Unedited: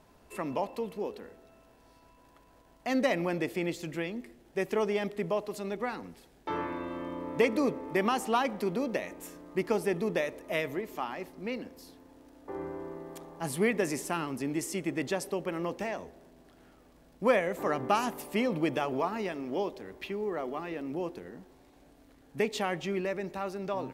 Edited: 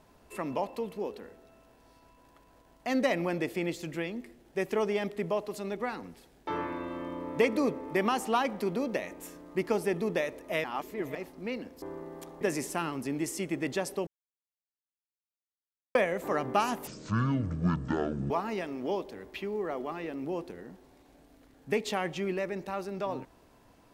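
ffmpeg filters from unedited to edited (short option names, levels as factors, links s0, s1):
-filter_complex "[0:a]asplit=9[s0][s1][s2][s3][s4][s5][s6][s7][s8];[s0]atrim=end=10.642[s9];[s1]atrim=start=10.638:end=11.152,asetpts=PTS-STARTPTS,areverse[s10];[s2]atrim=start=11.148:end=11.822[s11];[s3]atrim=start=12.758:end=13.352[s12];[s4]atrim=start=13.758:end=15.42,asetpts=PTS-STARTPTS,afade=t=out:st=1.658:d=0.004:c=hsin[s13];[s5]atrim=start=15.42:end=17.3,asetpts=PTS-STARTPTS,volume=0[s14];[s6]atrim=start=17.3:end=18.224,asetpts=PTS-STARTPTS,afade=t=in:d=0.004:c=hsin[s15];[s7]atrim=start=18.22:end=18.98,asetpts=PTS-STARTPTS,asetrate=23373,aresample=44100[s16];[s8]atrim=start=18.976[s17];[s9][s10]acrossfade=d=0.004:c1=hsin:c2=hsin[s18];[s18][s11]acrossfade=d=0.004:c1=hsin:c2=hsin[s19];[s19][s12]acrossfade=d=0.004:c1=hsin:c2=hsin[s20];[s13][s14][s15]concat=n=3:v=0:a=1[s21];[s20][s21]acrossfade=d=0.004:c1=hsin:c2=hsin[s22];[s22][s16]acrossfade=d=0.004:c1=hsin:c2=hsin[s23];[s23][s17]acrossfade=d=0.004:c1=hsin:c2=hsin"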